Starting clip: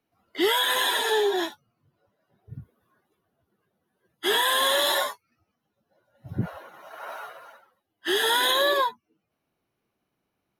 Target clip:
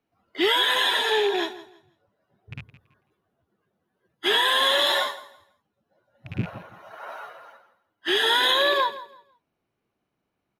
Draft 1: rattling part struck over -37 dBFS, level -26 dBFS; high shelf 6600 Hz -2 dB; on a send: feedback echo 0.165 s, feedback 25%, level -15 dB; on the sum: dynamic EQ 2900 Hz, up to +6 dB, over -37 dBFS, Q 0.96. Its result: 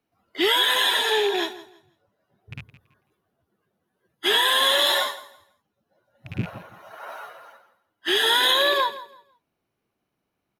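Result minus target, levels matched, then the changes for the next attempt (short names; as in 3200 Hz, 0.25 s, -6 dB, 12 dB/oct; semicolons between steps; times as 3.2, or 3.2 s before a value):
8000 Hz band +4.5 dB
change: high shelf 6600 Hz -11 dB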